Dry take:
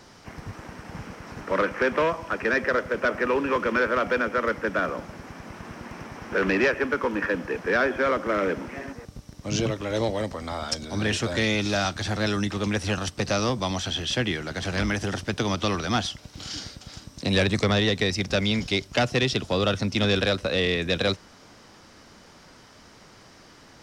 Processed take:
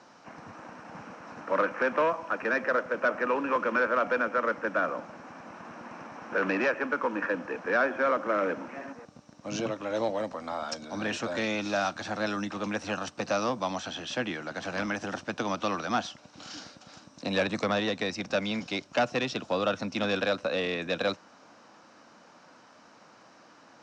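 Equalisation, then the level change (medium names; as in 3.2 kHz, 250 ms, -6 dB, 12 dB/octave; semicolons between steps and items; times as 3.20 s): cabinet simulation 280–7300 Hz, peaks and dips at 400 Hz -10 dB, 2 kHz -7 dB, 3.3 kHz -7 dB, 4.8 kHz -5 dB; treble shelf 4.8 kHz -9.5 dB; 0.0 dB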